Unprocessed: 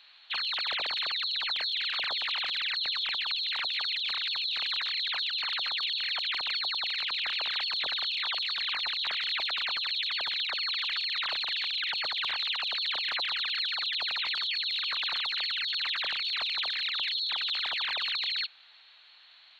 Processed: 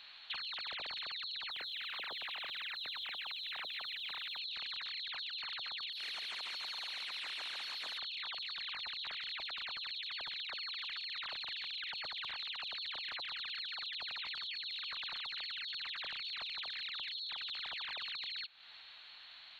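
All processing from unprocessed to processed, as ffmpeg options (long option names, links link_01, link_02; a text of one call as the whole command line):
ffmpeg -i in.wav -filter_complex "[0:a]asettb=1/sr,asplit=3[link_01][link_02][link_03];[link_01]atrim=end=1.504[link_04];[link_02]atrim=start=1.5:end=4.39,asetpts=PTS-STARTPTS,afade=type=in:duration=0.004:curve=qsin,afade=type=out:start_time=2.886:duration=0.004:curve=qsin,highpass=340,lowpass=4200,acrusher=bits=8:mix=0:aa=0.5,afreqshift=-130[link_05];[link_03]atrim=start=4.386[link_06];[link_04][link_05]acrossfade=duration=0.004:curve1=hsin:curve2=qsin[link_07];[link_07][link_06]acrossfade=duration=0.004:curve1=qsin:curve2=hsin,asettb=1/sr,asplit=3[link_08][link_09][link_10];[link_08]atrim=end=5.924[link_11];[link_09]atrim=start=5.92:end=7.98,asetpts=PTS-STARTPTS,afade=type=in:duration=0.004:curve=qsin,afade=type=out:start_time=2.056:duration=0.004:curve=qsin,asoftclip=type=hard:threshold=-31.5dB,highpass=360,lowpass=6600,aecho=1:1:140|280|420|560|700:0.668|0.241|0.0866|0.0312|0.0112,atrim=end_sample=90846[link_12];[link_10]atrim=start=7.976[link_13];[link_11][link_12]acrossfade=duration=0.004:curve1=hsin:curve2=qsin[link_14];[link_14][link_13]acrossfade=duration=0.004:curve1=qsin:curve2=hsin,bass=frequency=250:gain=8,treble=frequency=4000:gain=-1,acompressor=threshold=-43dB:ratio=6,volume=2dB" out.wav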